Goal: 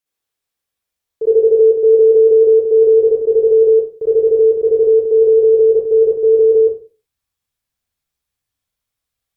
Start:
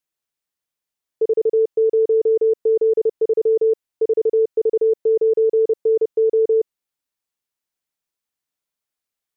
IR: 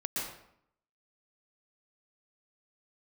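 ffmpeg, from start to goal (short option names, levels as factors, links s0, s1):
-filter_complex "[0:a]asubboost=boost=6:cutoff=140[s0];[1:a]atrim=start_sample=2205,asetrate=88200,aresample=44100[s1];[s0][s1]afir=irnorm=-1:irlink=0,volume=2.24"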